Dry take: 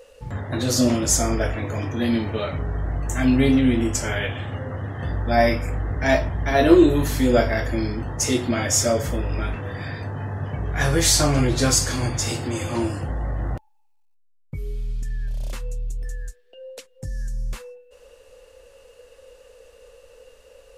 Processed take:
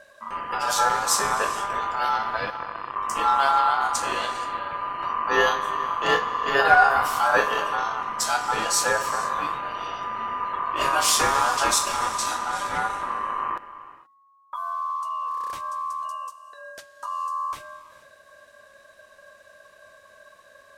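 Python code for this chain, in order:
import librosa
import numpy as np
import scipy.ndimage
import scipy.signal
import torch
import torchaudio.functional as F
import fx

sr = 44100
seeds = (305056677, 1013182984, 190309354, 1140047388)

y = fx.power_curve(x, sr, exponent=3.0, at=(2.5, 2.96))
y = fx.rev_gated(y, sr, seeds[0], gate_ms=500, shape='flat', drr_db=11.0)
y = y * np.sin(2.0 * np.pi * 1100.0 * np.arange(len(y)) / sr)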